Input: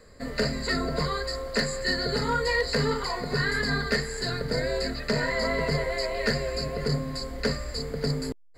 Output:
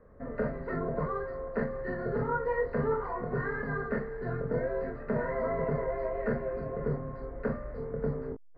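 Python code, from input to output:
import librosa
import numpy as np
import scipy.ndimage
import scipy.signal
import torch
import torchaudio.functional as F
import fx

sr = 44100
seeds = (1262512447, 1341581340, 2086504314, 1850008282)

p1 = scipy.signal.sosfilt(scipy.signal.butter(4, 1400.0, 'lowpass', fs=sr, output='sos'), x)
p2 = p1 + fx.room_early_taps(p1, sr, ms=(25, 43), db=(-5.0, -9.5), dry=0)
y = p2 * 10.0 ** (-4.0 / 20.0)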